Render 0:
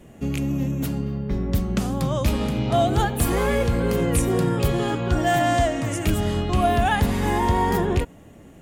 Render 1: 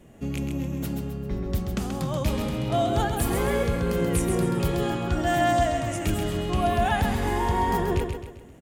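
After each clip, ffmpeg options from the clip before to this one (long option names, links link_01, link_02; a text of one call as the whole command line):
ffmpeg -i in.wav -af "aecho=1:1:132|264|396|528|660:0.501|0.21|0.0884|0.0371|0.0156,volume=-4.5dB" out.wav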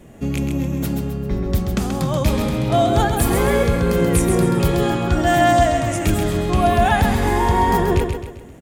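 ffmpeg -i in.wav -af "bandreject=frequency=2900:width=20,volume=7.5dB" out.wav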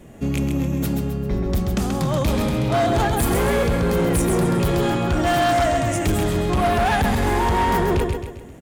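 ffmpeg -i in.wav -af "asoftclip=type=hard:threshold=-15.5dB" out.wav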